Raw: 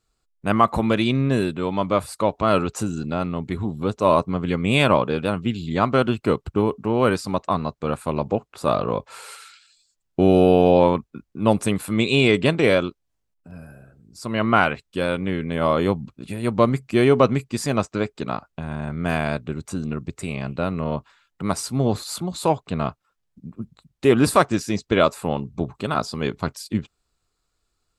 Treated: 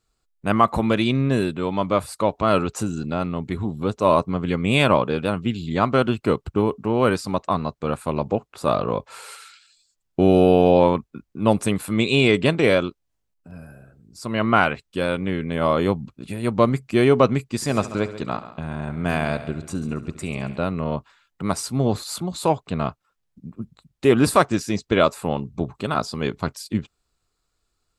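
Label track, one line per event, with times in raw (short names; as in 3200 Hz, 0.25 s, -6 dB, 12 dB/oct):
17.550000	20.580000	multi-head echo 69 ms, heads first and second, feedback 40%, level -16 dB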